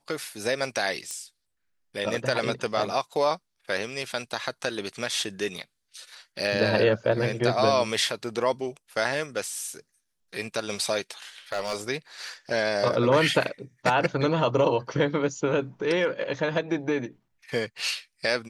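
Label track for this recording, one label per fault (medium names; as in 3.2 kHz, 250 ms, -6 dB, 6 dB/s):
1.110000	1.110000	pop -20 dBFS
11.520000	11.770000	clipped -23.5 dBFS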